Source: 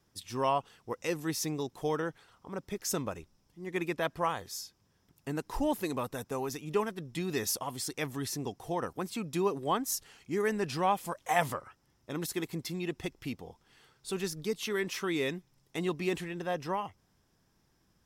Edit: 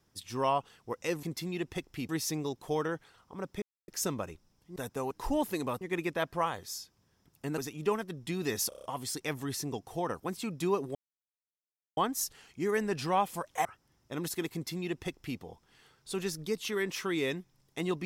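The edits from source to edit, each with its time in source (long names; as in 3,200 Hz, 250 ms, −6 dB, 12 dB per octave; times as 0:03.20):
0:02.76: splice in silence 0.26 s
0:03.64–0:05.41: swap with 0:06.11–0:06.46
0:07.57: stutter 0.03 s, 6 plays
0:09.68: splice in silence 1.02 s
0:11.36–0:11.63: remove
0:12.51–0:13.37: duplicate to 0:01.23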